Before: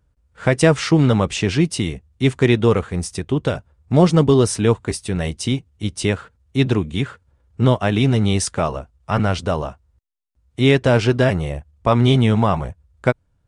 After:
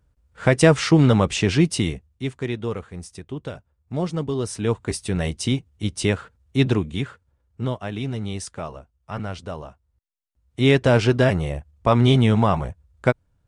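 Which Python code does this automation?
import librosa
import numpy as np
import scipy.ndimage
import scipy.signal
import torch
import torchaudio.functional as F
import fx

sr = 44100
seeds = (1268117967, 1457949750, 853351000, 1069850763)

y = fx.gain(x, sr, db=fx.line((1.9, -0.5), (2.31, -12.0), (4.33, -12.0), (4.98, -1.5), (6.67, -1.5), (7.78, -11.5), (9.65, -11.5), (10.77, -1.5)))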